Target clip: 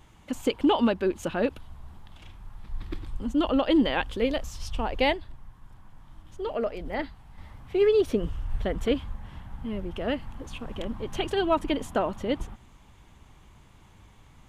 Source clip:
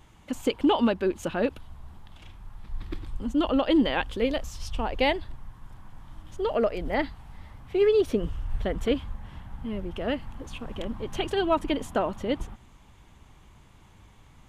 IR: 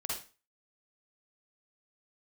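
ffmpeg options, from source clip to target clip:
-filter_complex "[0:a]asettb=1/sr,asplit=3[a][b][c];[a]atrim=end=5.144[d];[b]atrim=start=5.14:end=7.38,asetpts=PTS-STARTPTS,afade=t=in:d=0.004:c=qsin,afade=t=out:st=2.236:d=0.004:c=qsin,flanger=delay=0.7:depth=6.4:regen=-84:speed=1.7:shape=sinusoidal[e];[c]atrim=start=7.376[f];[d][e]acrossfade=d=0.004:c1=hsin:c2=qsin[g];[g][f]acrossfade=d=0.004:c1=qsin:c2=hsin"

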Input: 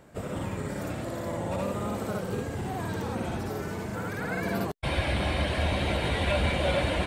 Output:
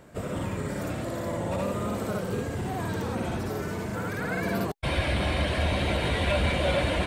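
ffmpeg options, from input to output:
-filter_complex "[0:a]bandreject=f=820:w=16,asplit=2[a][b];[b]asoftclip=type=tanh:threshold=-31.5dB,volume=-9dB[c];[a][c]amix=inputs=2:normalize=0"

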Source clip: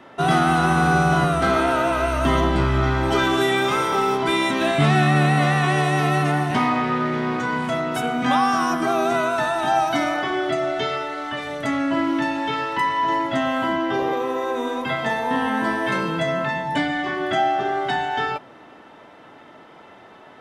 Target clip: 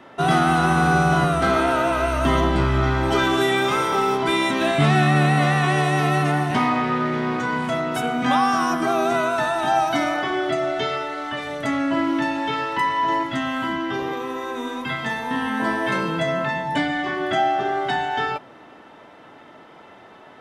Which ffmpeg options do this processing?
-filter_complex "[0:a]asettb=1/sr,asplit=3[a][b][c];[a]atrim=end=13.234[d];[b]atrim=start=13.23:end=15.6,asetpts=PTS-STARTPTS,afade=t=in:d=0.004:c=qsin,afade=t=out:st=2.366:d=0.004:c=qsin,equalizer=f=600:w=1.4:g=-9.5[e];[c]atrim=start=15.596[f];[d][e]acrossfade=d=0.004:c1=hsin:c2=qsin[g];[g][f]acrossfade=d=0.004:c1=qsin:c2=hsin"

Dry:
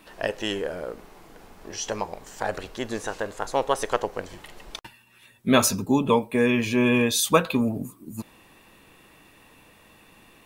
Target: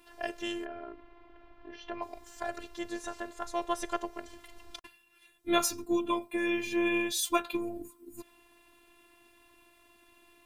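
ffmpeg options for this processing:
-filter_complex "[0:a]asplit=3[a][b][c];[a]afade=t=out:st=0.64:d=0.02[d];[b]lowpass=f=3.2k:w=0.5412,lowpass=f=3.2k:w=1.3066,afade=t=in:st=0.64:d=0.02,afade=t=out:st=2.01:d=0.02[e];[c]afade=t=in:st=2.01:d=0.02[f];[d][e][f]amix=inputs=3:normalize=0,afftfilt=real='hypot(re,im)*cos(PI*b)':imag='0':win_size=512:overlap=0.75,volume=-4.5dB"

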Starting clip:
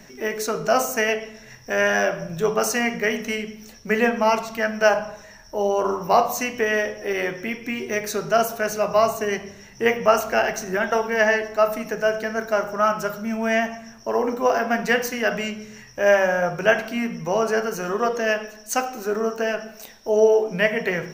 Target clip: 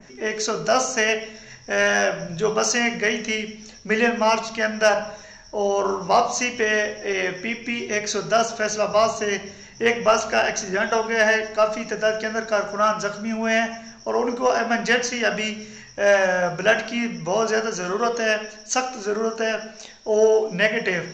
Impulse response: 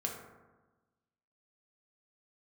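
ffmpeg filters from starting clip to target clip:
-af "adynamicequalizer=threshold=0.00891:dfrequency=4400:dqfactor=0.76:tfrequency=4400:tqfactor=0.76:attack=5:release=100:ratio=0.375:range=3.5:mode=boostabove:tftype=bell,aresample=16000,aresample=44100,acontrast=22,volume=-5dB"

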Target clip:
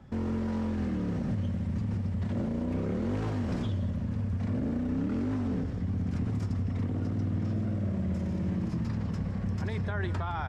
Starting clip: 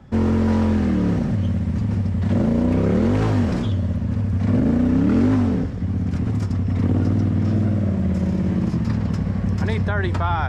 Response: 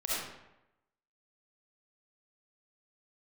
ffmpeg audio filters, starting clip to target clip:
-filter_complex "[0:a]alimiter=limit=-17.5dB:level=0:latency=1:release=59,asplit=2[a][b];[b]aecho=0:1:163:0.178[c];[a][c]amix=inputs=2:normalize=0,volume=-6.5dB"

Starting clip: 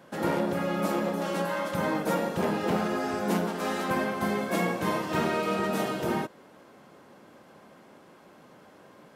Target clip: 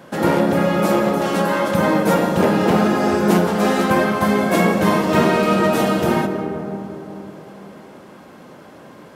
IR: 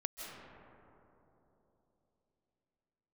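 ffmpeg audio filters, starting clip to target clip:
-filter_complex "[0:a]asplit=2[a][b];[1:a]atrim=start_sample=2205,lowshelf=f=380:g=5[c];[b][c]afir=irnorm=-1:irlink=0,volume=-2.5dB[d];[a][d]amix=inputs=2:normalize=0,volume=6dB"

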